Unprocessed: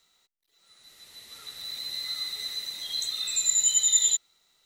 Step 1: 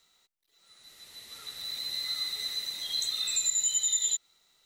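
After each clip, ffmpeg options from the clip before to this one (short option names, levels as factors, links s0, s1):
-af "acompressor=threshold=0.0631:ratio=10"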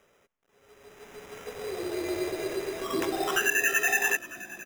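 -filter_complex "[0:a]acrusher=samples=10:mix=1:aa=0.000001,asplit=6[s0][s1][s2][s3][s4][s5];[s1]adelay=477,afreqshift=-42,volume=0.133[s6];[s2]adelay=954,afreqshift=-84,volume=0.075[s7];[s3]adelay=1431,afreqshift=-126,volume=0.0417[s8];[s4]adelay=1908,afreqshift=-168,volume=0.0234[s9];[s5]adelay=2385,afreqshift=-210,volume=0.0132[s10];[s0][s6][s7][s8][s9][s10]amix=inputs=6:normalize=0,volume=1.33"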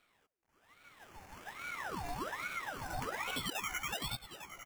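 -af "asuperstop=centerf=3100:order=4:qfactor=3.2,acompressor=threshold=0.0447:ratio=5,aeval=exprs='val(0)*sin(2*PI*1100*n/s+1100*0.7/1.2*sin(2*PI*1.2*n/s))':c=same,volume=0.562"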